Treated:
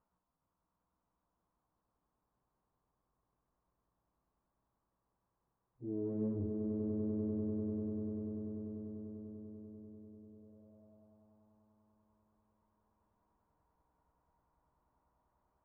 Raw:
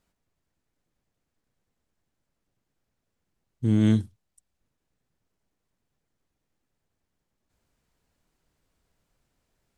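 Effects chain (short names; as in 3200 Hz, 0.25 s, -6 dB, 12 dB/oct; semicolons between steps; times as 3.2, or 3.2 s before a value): in parallel at -3 dB: limiter -18.5 dBFS, peak gain reduction 8.5 dB; on the sum: auto swell 0.26 s; sample leveller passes 1; plain phase-vocoder stretch 1.6×; one-sided clip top -34 dBFS, bottom -28.5 dBFS; chorus 0.85 Hz, delay 15.5 ms, depth 4.1 ms; swelling echo 98 ms, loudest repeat 8, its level -7.5 dB; on a send at -15 dB: reverb RT60 4.9 s, pre-delay 0.119 s; on the sum: envelope low-pass 400–1100 Hz down, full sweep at -49 dBFS; gain -7 dB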